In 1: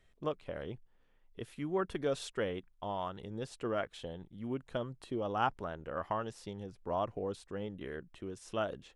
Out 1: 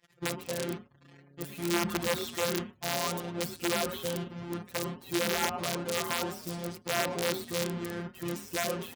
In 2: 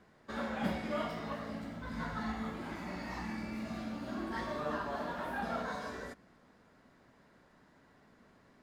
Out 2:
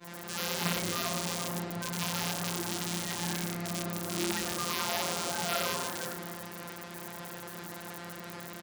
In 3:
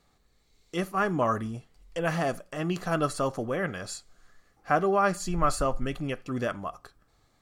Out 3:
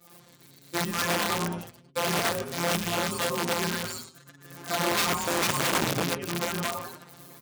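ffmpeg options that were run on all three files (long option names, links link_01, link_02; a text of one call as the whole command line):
ffmpeg -i in.wav -filter_complex "[0:a]aeval=exprs='val(0)+0.5*0.0211*sgn(val(0))':channel_layout=same,afftfilt=real='hypot(re,im)*cos(PI*b)':imag='0':win_size=1024:overlap=0.75,asplit=2[link_01][link_02];[link_02]alimiter=limit=-21.5dB:level=0:latency=1:release=43,volume=0dB[link_03];[link_01][link_03]amix=inputs=2:normalize=0,asplit=7[link_04][link_05][link_06][link_07][link_08][link_09][link_10];[link_05]adelay=106,afreqshift=-140,volume=-8dB[link_11];[link_06]adelay=212,afreqshift=-280,volume=-13.5dB[link_12];[link_07]adelay=318,afreqshift=-420,volume=-19dB[link_13];[link_08]adelay=424,afreqshift=-560,volume=-24.5dB[link_14];[link_09]adelay=530,afreqshift=-700,volume=-30.1dB[link_15];[link_10]adelay=636,afreqshift=-840,volume=-35.6dB[link_16];[link_04][link_11][link_12][link_13][link_14][link_15][link_16]amix=inputs=7:normalize=0,afftdn=noise_reduction=31:noise_floor=-49,aeval=exprs='(mod(9.44*val(0)+1,2)-1)/9.44':channel_layout=same,highpass=120,agate=range=-33dB:threshold=-30dB:ratio=3:detection=peak" out.wav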